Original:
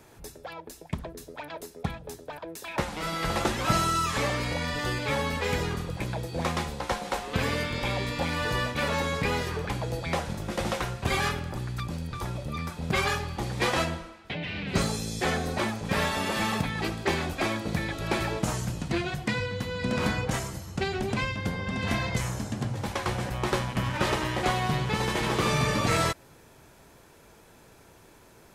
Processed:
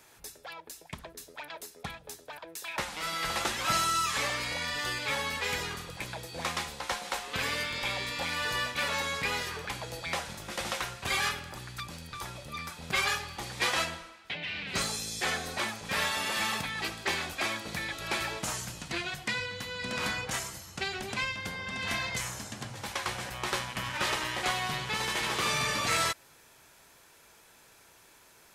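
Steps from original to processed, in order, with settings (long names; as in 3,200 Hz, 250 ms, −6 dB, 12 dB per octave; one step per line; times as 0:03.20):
tilt shelving filter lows −7.5 dB, about 770 Hz
level −5.5 dB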